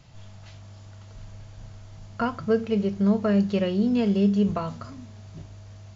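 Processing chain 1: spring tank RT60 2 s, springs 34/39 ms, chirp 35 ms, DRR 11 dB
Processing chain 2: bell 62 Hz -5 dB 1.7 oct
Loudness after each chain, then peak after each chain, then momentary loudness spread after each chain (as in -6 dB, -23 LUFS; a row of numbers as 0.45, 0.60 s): -23.5, -24.5 LUFS; -11.0, -11.5 dBFS; 22, 13 LU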